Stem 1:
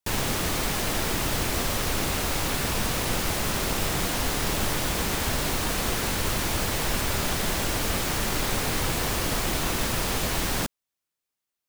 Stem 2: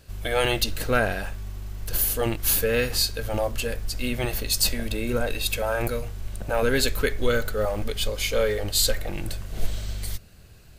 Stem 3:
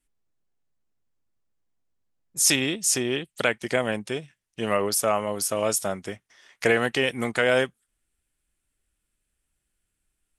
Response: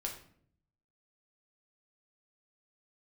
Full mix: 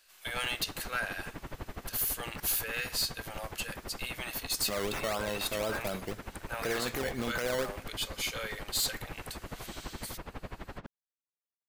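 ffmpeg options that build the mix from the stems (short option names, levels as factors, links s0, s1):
-filter_complex "[0:a]lowpass=1900,aeval=exprs='val(0)*pow(10,-23*(0.5-0.5*cos(2*PI*12*n/s))/20)':c=same,adelay=200,volume=0.335[s0];[1:a]highpass=1200,asoftclip=type=tanh:threshold=0.119,volume=0.562[s1];[2:a]highshelf=f=4200:g=-11.5,acrusher=samples=14:mix=1:aa=0.000001:lfo=1:lforange=8.4:lforate=4,volume=0.473,asplit=3[s2][s3][s4];[s2]atrim=end=2.4,asetpts=PTS-STARTPTS,afade=t=out:st=2.396:d=0.004:c=hsin[s5];[s3]atrim=start=2.4:end=4.68,asetpts=PTS-STARTPTS,volume=0[s6];[s4]atrim=start=4.68,asetpts=PTS-STARTPTS,afade=t=in:d=0.004:c=hsin[s7];[s5][s6][s7]concat=n=3:v=0:a=1,asplit=2[s8][s9];[s9]volume=0.251[s10];[3:a]atrim=start_sample=2205[s11];[s10][s11]afir=irnorm=-1:irlink=0[s12];[s0][s1][s8][s12]amix=inputs=4:normalize=0,alimiter=limit=0.0708:level=0:latency=1:release=20"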